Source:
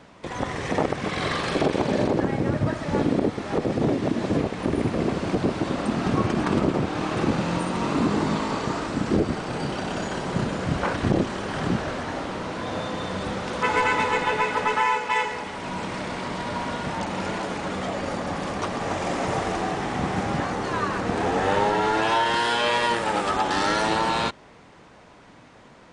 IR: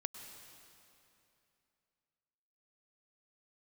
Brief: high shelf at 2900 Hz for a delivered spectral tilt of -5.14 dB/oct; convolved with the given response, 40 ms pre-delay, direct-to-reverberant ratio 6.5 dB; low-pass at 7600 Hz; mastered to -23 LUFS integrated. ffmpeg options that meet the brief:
-filter_complex "[0:a]lowpass=7.6k,highshelf=f=2.9k:g=-8.5,asplit=2[a][b];[1:a]atrim=start_sample=2205,adelay=40[c];[b][c]afir=irnorm=-1:irlink=0,volume=-5dB[d];[a][d]amix=inputs=2:normalize=0,volume=2dB"

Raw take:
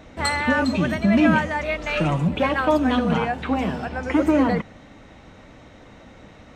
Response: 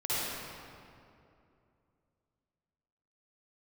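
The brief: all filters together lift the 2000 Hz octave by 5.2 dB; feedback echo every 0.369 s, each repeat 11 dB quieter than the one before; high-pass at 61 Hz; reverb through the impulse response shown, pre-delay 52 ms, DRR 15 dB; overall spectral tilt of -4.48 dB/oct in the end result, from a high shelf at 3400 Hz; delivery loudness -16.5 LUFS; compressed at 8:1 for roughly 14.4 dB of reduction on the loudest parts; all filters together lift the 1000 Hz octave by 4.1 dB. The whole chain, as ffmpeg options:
-filter_complex "[0:a]highpass=61,equalizer=f=1k:t=o:g=4,equalizer=f=2k:t=o:g=7,highshelf=f=3.4k:g=-6.5,acompressor=threshold=-27dB:ratio=8,aecho=1:1:369|738|1107:0.282|0.0789|0.0221,asplit=2[a][b];[1:a]atrim=start_sample=2205,adelay=52[c];[b][c]afir=irnorm=-1:irlink=0,volume=-23.5dB[d];[a][d]amix=inputs=2:normalize=0,volume=13.5dB"

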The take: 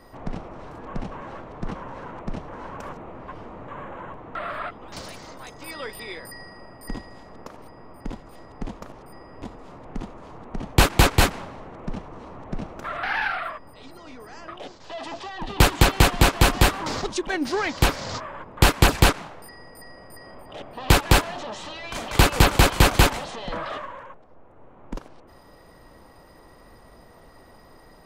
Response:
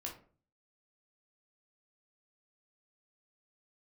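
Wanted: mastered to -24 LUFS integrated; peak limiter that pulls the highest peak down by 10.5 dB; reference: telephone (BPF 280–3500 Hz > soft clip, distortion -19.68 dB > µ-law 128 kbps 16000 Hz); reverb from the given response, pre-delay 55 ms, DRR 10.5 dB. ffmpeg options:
-filter_complex "[0:a]alimiter=limit=-16dB:level=0:latency=1,asplit=2[a][b];[1:a]atrim=start_sample=2205,adelay=55[c];[b][c]afir=irnorm=-1:irlink=0,volume=-9dB[d];[a][d]amix=inputs=2:normalize=0,highpass=280,lowpass=3.5k,asoftclip=threshold=-19.5dB,volume=10dB" -ar 16000 -c:a pcm_mulaw

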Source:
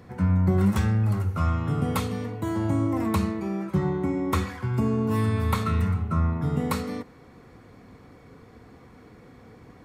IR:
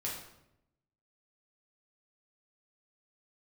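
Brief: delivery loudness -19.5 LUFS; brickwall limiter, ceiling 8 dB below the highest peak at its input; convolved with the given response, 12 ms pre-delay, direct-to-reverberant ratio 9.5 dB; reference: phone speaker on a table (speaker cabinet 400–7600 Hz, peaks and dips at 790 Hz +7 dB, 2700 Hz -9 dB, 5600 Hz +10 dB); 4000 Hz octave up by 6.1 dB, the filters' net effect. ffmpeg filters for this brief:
-filter_complex "[0:a]equalizer=f=4k:t=o:g=6.5,alimiter=limit=-19dB:level=0:latency=1,asplit=2[a][b];[1:a]atrim=start_sample=2205,adelay=12[c];[b][c]afir=irnorm=-1:irlink=0,volume=-11.5dB[d];[a][d]amix=inputs=2:normalize=0,highpass=f=400:w=0.5412,highpass=f=400:w=1.3066,equalizer=f=790:t=q:w=4:g=7,equalizer=f=2.7k:t=q:w=4:g=-9,equalizer=f=5.6k:t=q:w=4:g=10,lowpass=f=7.6k:w=0.5412,lowpass=f=7.6k:w=1.3066,volume=15dB"

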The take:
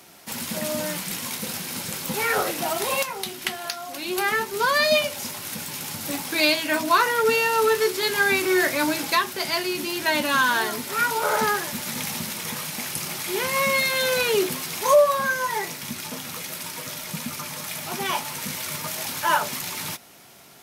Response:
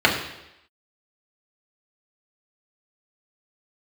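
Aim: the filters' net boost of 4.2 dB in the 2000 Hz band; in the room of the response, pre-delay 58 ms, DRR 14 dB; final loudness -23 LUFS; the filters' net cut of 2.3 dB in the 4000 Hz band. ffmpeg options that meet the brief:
-filter_complex "[0:a]equalizer=f=2k:t=o:g=6.5,equalizer=f=4k:t=o:g=-5,asplit=2[a][b];[1:a]atrim=start_sample=2205,adelay=58[c];[b][c]afir=irnorm=-1:irlink=0,volume=-35.5dB[d];[a][d]amix=inputs=2:normalize=0,volume=-1dB"

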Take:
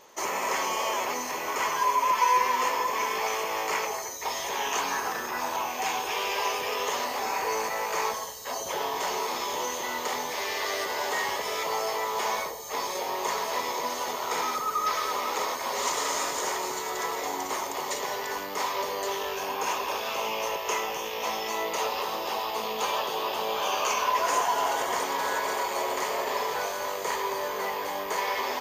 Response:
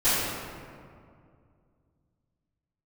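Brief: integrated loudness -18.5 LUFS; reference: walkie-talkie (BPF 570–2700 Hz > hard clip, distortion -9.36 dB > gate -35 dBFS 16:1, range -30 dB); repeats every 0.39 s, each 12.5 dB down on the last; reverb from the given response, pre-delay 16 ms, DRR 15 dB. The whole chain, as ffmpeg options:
-filter_complex "[0:a]aecho=1:1:390|780|1170:0.237|0.0569|0.0137,asplit=2[a][b];[1:a]atrim=start_sample=2205,adelay=16[c];[b][c]afir=irnorm=-1:irlink=0,volume=-31dB[d];[a][d]amix=inputs=2:normalize=0,highpass=570,lowpass=2.7k,asoftclip=type=hard:threshold=-29dB,agate=range=-30dB:threshold=-35dB:ratio=16,volume=14dB"

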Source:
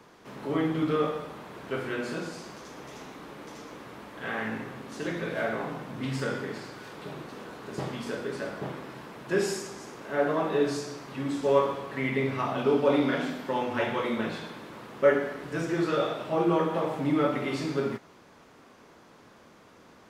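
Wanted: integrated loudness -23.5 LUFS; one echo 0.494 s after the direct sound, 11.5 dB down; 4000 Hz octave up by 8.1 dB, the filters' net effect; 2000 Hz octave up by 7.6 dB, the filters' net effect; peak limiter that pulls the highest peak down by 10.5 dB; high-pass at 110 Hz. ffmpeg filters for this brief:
-af "highpass=110,equalizer=f=2k:t=o:g=8,equalizer=f=4k:t=o:g=7.5,alimiter=limit=-18dB:level=0:latency=1,aecho=1:1:494:0.266,volume=6.5dB"

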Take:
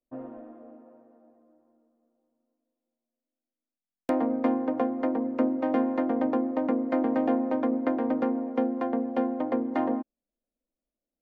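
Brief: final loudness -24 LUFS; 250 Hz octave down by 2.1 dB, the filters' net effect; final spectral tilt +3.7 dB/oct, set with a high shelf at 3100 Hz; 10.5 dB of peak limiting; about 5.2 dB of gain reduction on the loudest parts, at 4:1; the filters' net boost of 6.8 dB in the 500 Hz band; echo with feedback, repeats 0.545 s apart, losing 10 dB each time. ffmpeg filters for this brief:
-af "equalizer=f=250:t=o:g=-4.5,equalizer=f=500:t=o:g=8.5,highshelf=f=3.1k:g=-4,acompressor=threshold=-24dB:ratio=4,alimiter=limit=-22.5dB:level=0:latency=1,aecho=1:1:545|1090|1635|2180:0.316|0.101|0.0324|0.0104,volume=7dB"

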